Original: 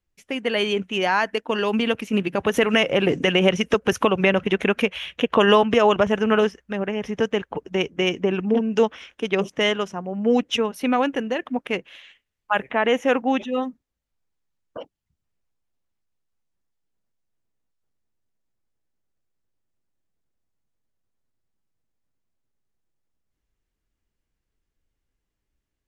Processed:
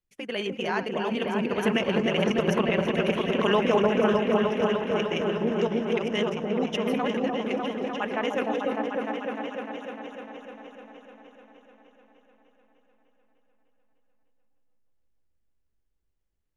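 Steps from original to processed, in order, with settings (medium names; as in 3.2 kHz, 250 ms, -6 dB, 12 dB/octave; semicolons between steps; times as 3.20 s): backward echo that repeats 601 ms, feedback 54%, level -13 dB; granular stretch 0.64×, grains 33 ms; delay with an opening low-pass 301 ms, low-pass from 750 Hz, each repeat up 1 oct, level 0 dB; trim -7 dB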